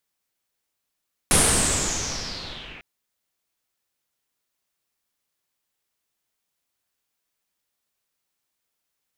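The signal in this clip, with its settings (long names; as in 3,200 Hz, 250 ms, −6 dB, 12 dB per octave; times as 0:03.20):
filter sweep on noise pink, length 1.50 s lowpass, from 10,000 Hz, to 2,300 Hz, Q 6, linear, gain ramp −26 dB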